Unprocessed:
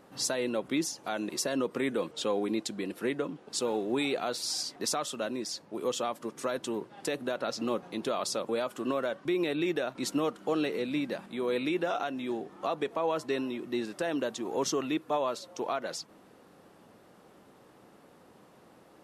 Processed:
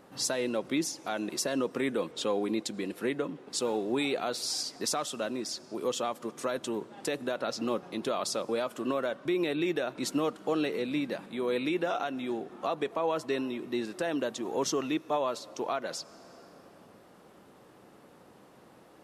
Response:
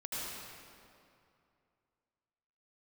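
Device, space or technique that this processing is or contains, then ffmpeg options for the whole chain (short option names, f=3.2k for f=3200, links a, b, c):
ducked reverb: -filter_complex "[0:a]asplit=3[a][b][c];[1:a]atrim=start_sample=2205[d];[b][d]afir=irnorm=-1:irlink=0[e];[c]apad=whole_len=839552[f];[e][f]sidechaincompress=threshold=-44dB:ratio=4:attack=16:release=497,volume=-13dB[g];[a][g]amix=inputs=2:normalize=0"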